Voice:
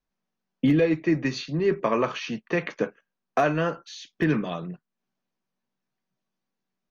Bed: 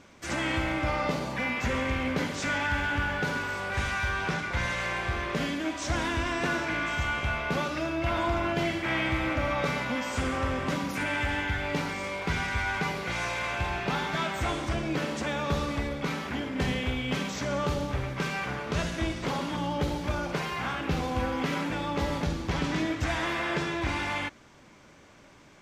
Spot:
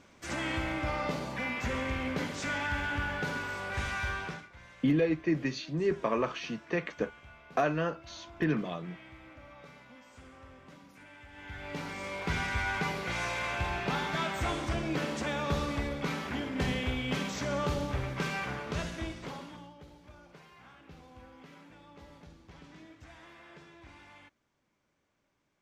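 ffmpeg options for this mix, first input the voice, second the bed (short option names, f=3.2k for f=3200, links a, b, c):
-filter_complex "[0:a]adelay=4200,volume=-6dB[a];[1:a]volume=16.5dB,afade=t=out:st=4.11:d=0.38:silence=0.112202,afade=t=in:st=11.32:d=1.03:silence=0.0891251,afade=t=out:st=18.35:d=1.4:silence=0.0891251[b];[a][b]amix=inputs=2:normalize=0"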